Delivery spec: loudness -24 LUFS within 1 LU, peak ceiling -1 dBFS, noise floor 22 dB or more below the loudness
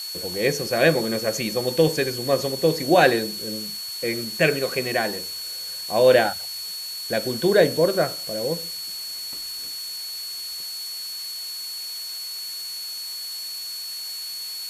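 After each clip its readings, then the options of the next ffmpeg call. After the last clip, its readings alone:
steady tone 4400 Hz; tone level -31 dBFS; noise floor -33 dBFS; noise floor target -46 dBFS; loudness -24.0 LUFS; peak -2.5 dBFS; loudness target -24.0 LUFS
-> -af "bandreject=f=4.4k:w=30"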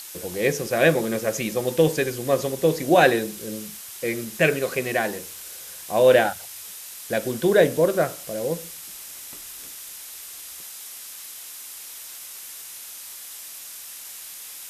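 steady tone none; noise floor -39 dBFS; noise floor target -44 dBFS
-> -af "afftdn=nr=6:nf=-39"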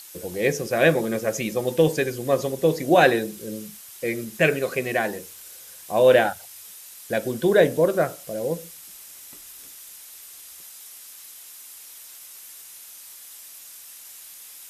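noise floor -44 dBFS; noise floor target -45 dBFS
-> -af "afftdn=nr=6:nf=-44"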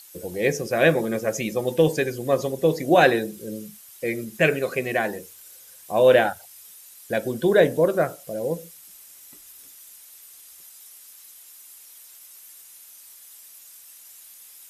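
noise floor -48 dBFS; loudness -22.0 LUFS; peak -3.0 dBFS; loudness target -24.0 LUFS
-> -af "volume=-2dB"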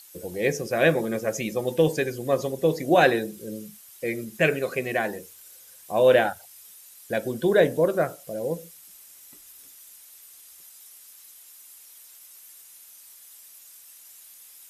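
loudness -24.0 LUFS; peak -5.0 dBFS; noise floor -50 dBFS

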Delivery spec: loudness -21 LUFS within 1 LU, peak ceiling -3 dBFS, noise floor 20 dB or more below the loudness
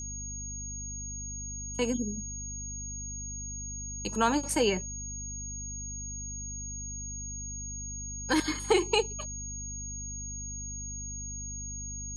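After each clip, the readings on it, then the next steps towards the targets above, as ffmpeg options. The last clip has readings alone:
hum 50 Hz; harmonics up to 250 Hz; hum level -39 dBFS; steady tone 6600 Hz; tone level -38 dBFS; loudness -33.5 LUFS; peak -12.0 dBFS; loudness target -21.0 LUFS
-> -af "bandreject=f=50:t=h:w=6,bandreject=f=100:t=h:w=6,bandreject=f=150:t=h:w=6,bandreject=f=200:t=h:w=6,bandreject=f=250:t=h:w=6"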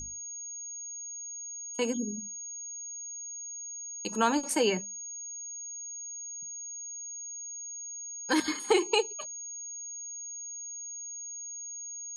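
hum none; steady tone 6600 Hz; tone level -38 dBFS
-> -af "bandreject=f=6.6k:w=30"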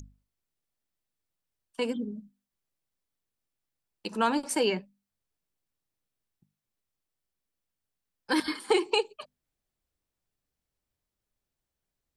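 steady tone none; loudness -29.5 LUFS; peak -12.0 dBFS; loudness target -21.0 LUFS
-> -af "volume=8.5dB"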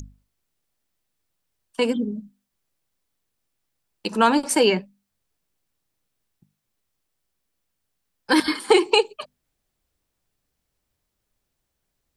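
loudness -21.0 LUFS; peak -3.5 dBFS; noise floor -79 dBFS

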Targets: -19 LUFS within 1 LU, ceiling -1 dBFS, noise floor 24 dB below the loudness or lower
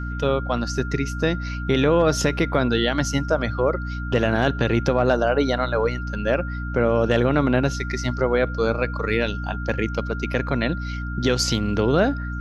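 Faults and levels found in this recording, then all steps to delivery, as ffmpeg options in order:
hum 60 Hz; harmonics up to 300 Hz; hum level -26 dBFS; steady tone 1400 Hz; tone level -34 dBFS; loudness -22.5 LUFS; peak -6.5 dBFS; loudness target -19.0 LUFS
-> -af "bandreject=f=60:t=h:w=6,bandreject=f=120:t=h:w=6,bandreject=f=180:t=h:w=6,bandreject=f=240:t=h:w=6,bandreject=f=300:t=h:w=6"
-af "bandreject=f=1.4k:w=30"
-af "volume=3.5dB"

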